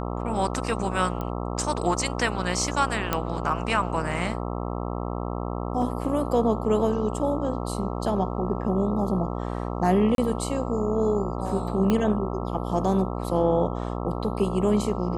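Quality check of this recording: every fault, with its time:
buzz 60 Hz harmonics 22 -30 dBFS
1.21 pop -19 dBFS
3.13 pop -8 dBFS
5.82 gap 2.5 ms
10.15–10.18 gap 32 ms
11.9 pop -11 dBFS

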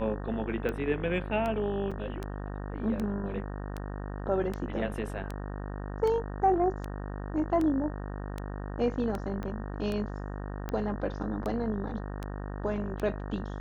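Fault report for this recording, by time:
buzz 50 Hz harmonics 37 -37 dBFS
tick 78 rpm -21 dBFS
1.91–1.92 gap 5.9 ms
9.43 pop -25 dBFS

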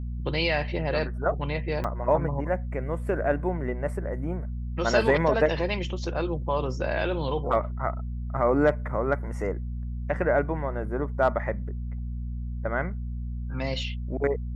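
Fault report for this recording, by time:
hum 60 Hz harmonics 4 -32 dBFS
1.84 gap 4.1 ms

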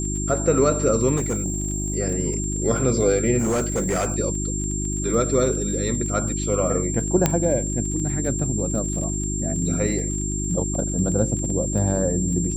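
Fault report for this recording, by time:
crackle 27/s -30 dBFS
hum 50 Hz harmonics 7 -27 dBFS
tone 7400 Hz -28 dBFS
1.16–1.96 clipped -19 dBFS
3.38–4.14 clipped -18.5 dBFS
7.26 pop -3 dBFS

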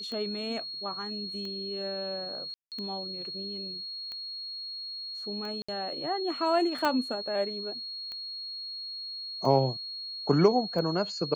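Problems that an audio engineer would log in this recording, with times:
tick 45 rpm -27 dBFS
tone 4300 Hz -36 dBFS
2.54–2.72 gap 0.178 s
5.62–5.68 gap 65 ms
6.85 pop -14 dBFS

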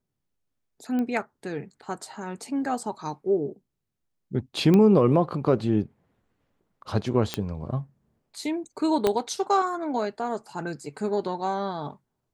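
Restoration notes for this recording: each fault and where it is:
0.99 pop -19 dBFS
4.74 pop -11 dBFS
7.34 pop -10 dBFS
9.07 pop -9 dBFS

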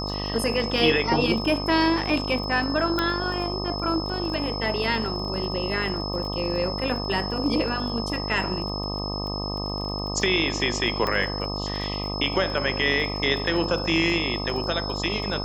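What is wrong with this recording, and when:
buzz 50 Hz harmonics 25 -31 dBFS
crackle 20/s -33 dBFS
tone 5200 Hz -32 dBFS
2.99 pop -10 dBFS
11.07 pop -13 dBFS

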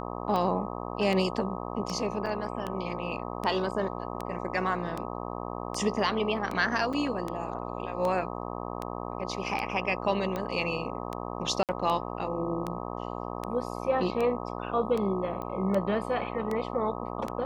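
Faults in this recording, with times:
buzz 60 Hz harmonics 21 -36 dBFS
tick 78 rpm -19 dBFS
2.26–2.27 gap 5.4 ms
6.93–6.94 gap 5.2 ms
11.63–11.69 gap 58 ms
15.42 pop -24 dBFS

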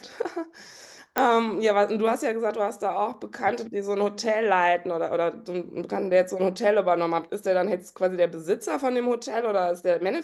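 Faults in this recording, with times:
1.18 pop -8 dBFS

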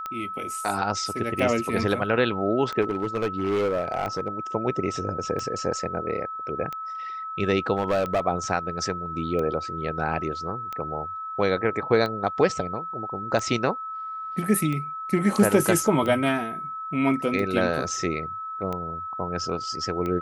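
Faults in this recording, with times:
tick 45 rpm -18 dBFS
tone 1300 Hz -31 dBFS
2.81–4.28 clipped -20.5 dBFS
7.77–8.21 clipped -18 dBFS

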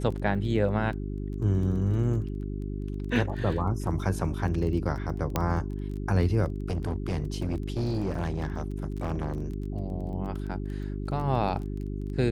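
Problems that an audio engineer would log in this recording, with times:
crackle 16/s -36 dBFS
hum 50 Hz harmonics 8 -33 dBFS
5.36 pop -11 dBFS
6.7–9.42 clipped -24.5 dBFS

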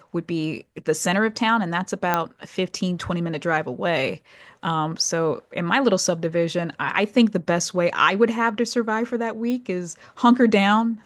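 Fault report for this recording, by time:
2.14 pop -6 dBFS
9.5 pop -16 dBFS

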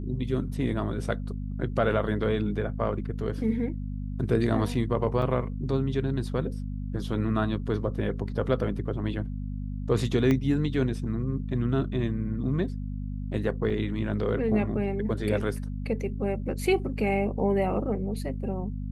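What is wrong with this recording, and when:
hum 50 Hz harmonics 5 -33 dBFS
5.22 gap 2.6 ms
10.31 pop -14 dBFS
13.7–13.71 gap 5.2 ms

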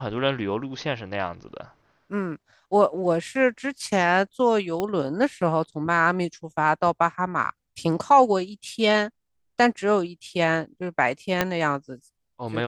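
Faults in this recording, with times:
4.8 pop -13 dBFS
11.41 pop -6 dBFS

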